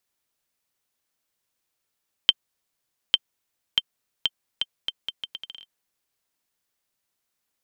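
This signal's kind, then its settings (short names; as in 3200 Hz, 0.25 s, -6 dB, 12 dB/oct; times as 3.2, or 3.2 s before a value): bouncing ball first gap 0.85 s, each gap 0.75, 3130 Hz, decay 39 ms -2 dBFS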